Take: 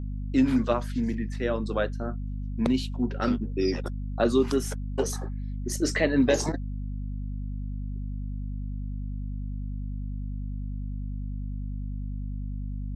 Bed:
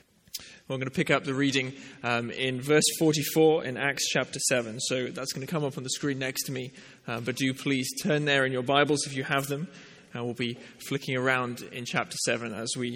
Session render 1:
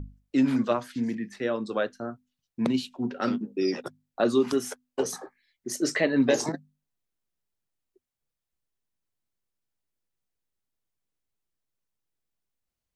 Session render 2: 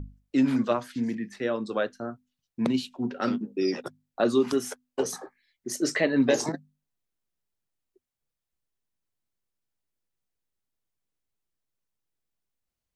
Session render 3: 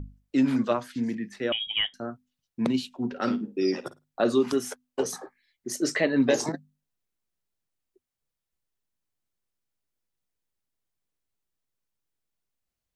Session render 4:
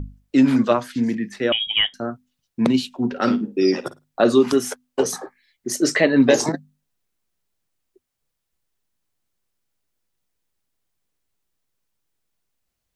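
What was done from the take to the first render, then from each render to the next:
mains-hum notches 50/100/150/200/250 Hz
no processing that can be heard
0:01.52–0:01.94: voice inversion scrambler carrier 3,500 Hz; 0:03.07–0:04.35: flutter between parallel walls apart 9.1 metres, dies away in 0.21 s
level +7.5 dB

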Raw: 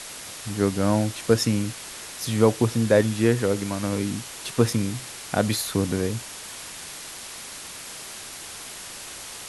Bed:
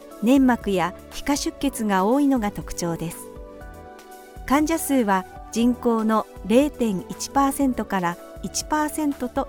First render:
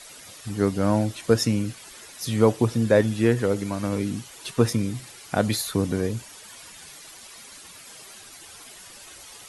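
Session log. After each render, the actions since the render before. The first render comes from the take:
broadband denoise 11 dB, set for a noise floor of −39 dBFS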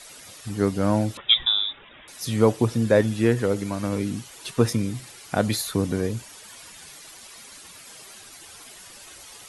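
0:01.17–0:02.08: voice inversion scrambler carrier 3,700 Hz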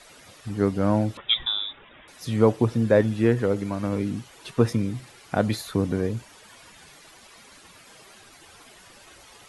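high-shelf EQ 4,100 Hz −11.5 dB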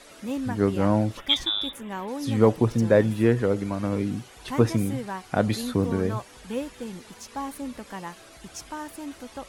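mix in bed −13.5 dB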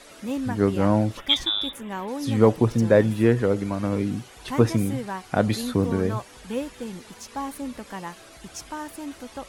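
level +1.5 dB

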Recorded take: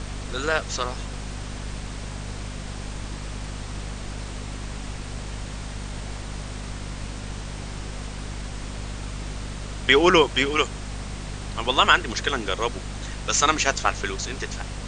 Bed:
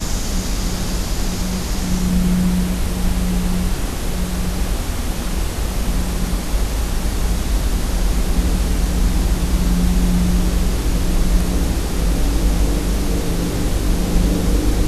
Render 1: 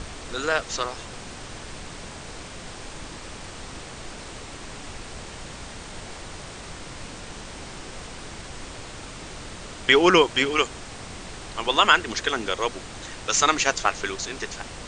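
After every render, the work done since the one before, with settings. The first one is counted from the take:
mains-hum notches 50/100/150/200/250 Hz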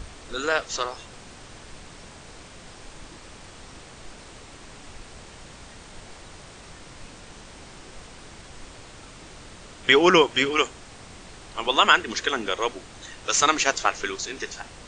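noise reduction from a noise print 6 dB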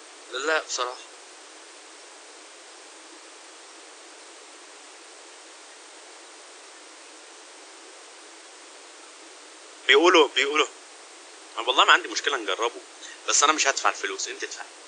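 Chebyshev high-pass filter 310 Hz, order 6
high-shelf EQ 7,100 Hz +7 dB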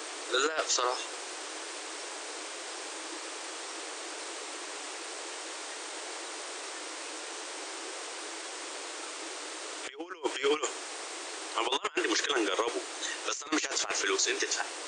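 compressor whose output falls as the input rises −28 dBFS, ratio −0.5
brickwall limiter −17.5 dBFS, peak gain reduction 9 dB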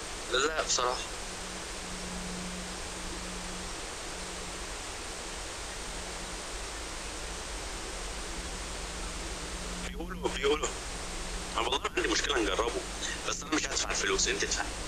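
mix in bed −25 dB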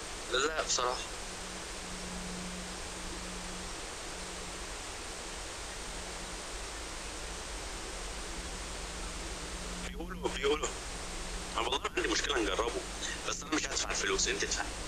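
level −2.5 dB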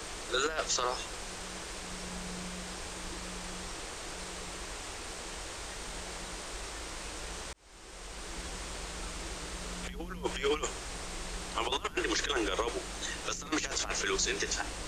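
0:07.53–0:08.41: fade in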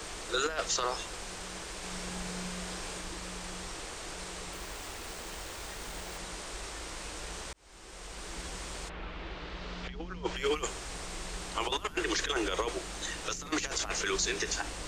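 0:01.78–0:03.01: double-tracking delay 43 ms −3 dB
0:04.53–0:06.18: hold until the input has moved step −45.5 dBFS
0:08.88–0:10.35: low-pass filter 2,900 Hz → 6,400 Hz 24 dB per octave

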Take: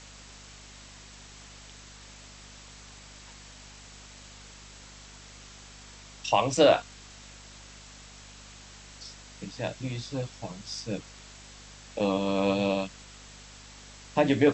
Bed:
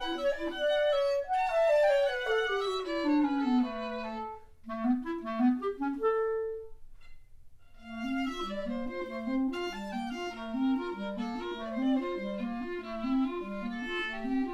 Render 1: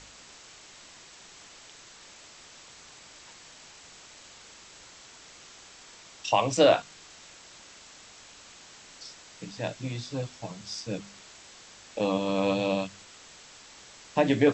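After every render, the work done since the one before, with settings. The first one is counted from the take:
hum removal 50 Hz, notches 5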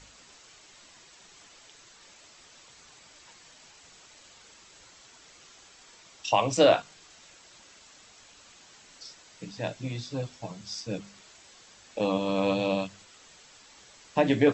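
broadband denoise 6 dB, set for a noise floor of −51 dBFS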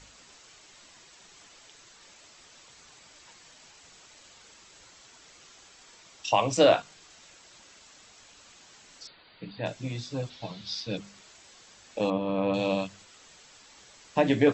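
0:09.07–0:09.66: linear-phase brick-wall low-pass 4,800 Hz
0:10.30–0:10.97: low-pass with resonance 3,900 Hz, resonance Q 3.7
0:12.10–0:12.54: high-frequency loss of the air 400 metres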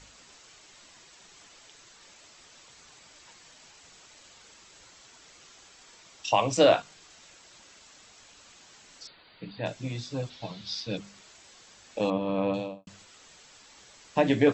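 0:12.41–0:12.87: fade out and dull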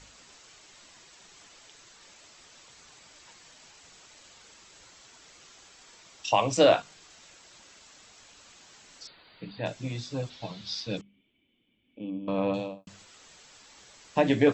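0:11.01–0:12.28: formant resonators in series i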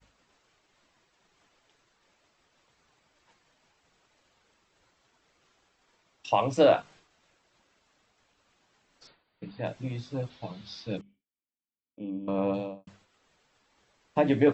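downward expander −46 dBFS
low-pass filter 1,700 Hz 6 dB per octave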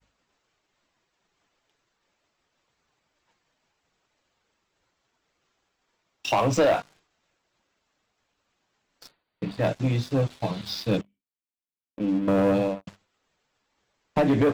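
downward compressor, threshold −24 dBFS, peak gain reduction 8.5 dB
leveller curve on the samples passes 3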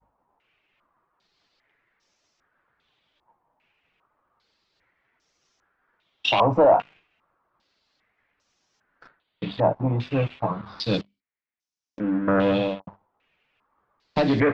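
low-pass on a step sequencer 2.5 Hz 910–5,800 Hz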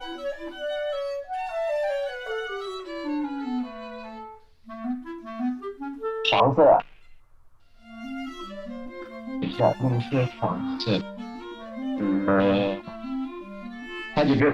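mix in bed −1.5 dB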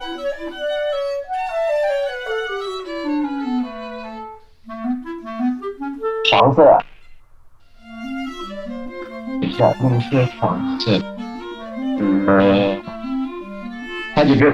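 level +7.5 dB
brickwall limiter −2 dBFS, peak gain reduction 2.5 dB

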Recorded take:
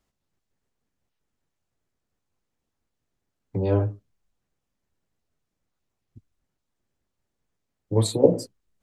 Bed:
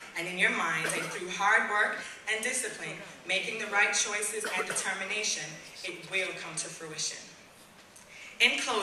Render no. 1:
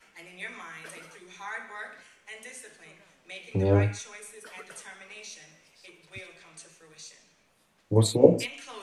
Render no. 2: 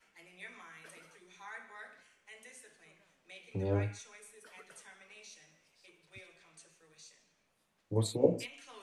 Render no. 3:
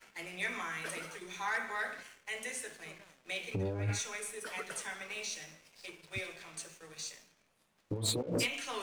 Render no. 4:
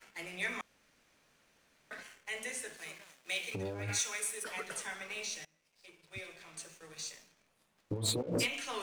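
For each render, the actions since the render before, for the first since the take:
mix in bed −13 dB
level −10 dB
compressor whose output falls as the input rises −40 dBFS, ratio −1; leveller curve on the samples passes 2
0:00.61–0:01.91: fill with room tone; 0:02.77–0:04.44: spectral tilt +2 dB per octave; 0:05.45–0:06.97: fade in, from −23 dB

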